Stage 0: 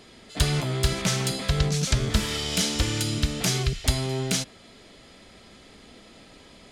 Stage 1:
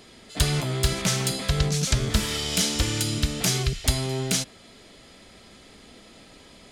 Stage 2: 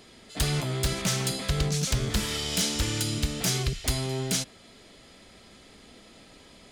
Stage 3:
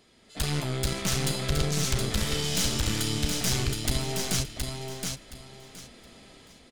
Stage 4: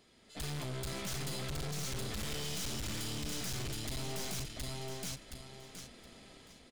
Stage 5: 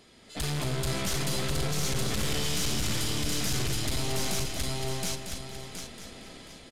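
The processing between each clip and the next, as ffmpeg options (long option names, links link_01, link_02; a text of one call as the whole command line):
ffmpeg -i in.wav -af "highshelf=frequency=7900:gain=5.5" out.wav
ffmpeg -i in.wav -af "aeval=exprs='0.178*(abs(mod(val(0)/0.178+3,4)-2)-1)':channel_layout=same,volume=-2.5dB" out.wav
ffmpeg -i in.wav -af "dynaudnorm=framelen=150:gausssize=5:maxgain=8dB,aeval=exprs='(tanh(6.31*val(0)+0.7)-tanh(0.7))/6.31':channel_layout=same,aecho=1:1:720|1440|2160:0.596|0.137|0.0315,volume=-5dB" out.wav
ffmpeg -i in.wav -af "aeval=exprs='(tanh(56.2*val(0)+0.5)-tanh(0.5))/56.2':channel_layout=same,volume=-2.5dB" out.wav
ffmpeg -i in.wav -filter_complex "[0:a]asplit=2[link_01][link_02];[link_02]aecho=0:1:230|460|690|920:0.422|0.131|0.0405|0.0126[link_03];[link_01][link_03]amix=inputs=2:normalize=0,aresample=32000,aresample=44100,volume=8.5dB" out.wav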